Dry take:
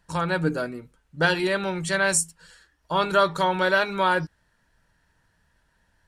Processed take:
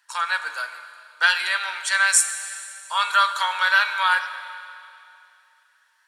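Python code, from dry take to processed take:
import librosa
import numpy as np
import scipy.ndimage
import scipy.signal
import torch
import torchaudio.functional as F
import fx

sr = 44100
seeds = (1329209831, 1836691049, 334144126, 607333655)

y = scipy.signal.sosfilt(scipy.signal.butter(4, 1100.0, 'highpass', fs=sr, output='sos'), x)
y = fx.rev_schroeder(y, sr, rt60_s=2.6, comb_ms=33, drr_db=9.5)
y = F.gain(torch.from_numpy(y), 5.5).numpy()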